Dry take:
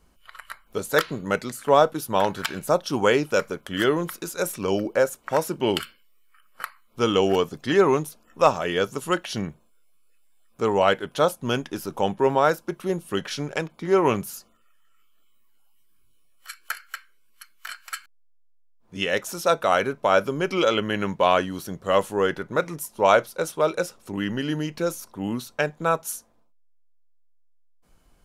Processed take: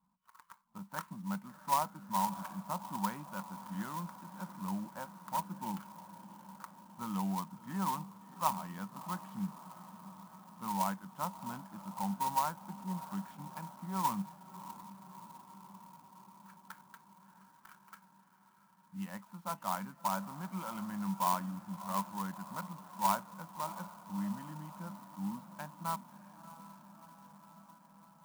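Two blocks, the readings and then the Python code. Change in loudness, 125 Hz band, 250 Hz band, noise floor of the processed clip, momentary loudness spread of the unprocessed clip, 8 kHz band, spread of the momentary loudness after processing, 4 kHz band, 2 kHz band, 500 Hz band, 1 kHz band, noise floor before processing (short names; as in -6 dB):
-14.5 dB, -10.5 dB, -11.5 dB, -65 dBFS, 15 LU, -11.5 dB, 20 LU, -19.5 dB, -21.5 dB, -28.0 dB, -10.0 dB, -59 dBFS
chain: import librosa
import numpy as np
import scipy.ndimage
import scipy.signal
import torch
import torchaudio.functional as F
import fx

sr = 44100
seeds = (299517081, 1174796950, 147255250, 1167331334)

y = fx.double_bandpass(x, sr, hz=430.0, octaves=2.3)
y = fx.echo_diffused(y, sr, ms=652, feedback_pct=70, wet_db=-14.5)
y = fx.clock_jitter(y, sr, seeds[0], jitter_ms=0.047)
y = F.gain(torch.from_numpy(y), -4.0).numpy()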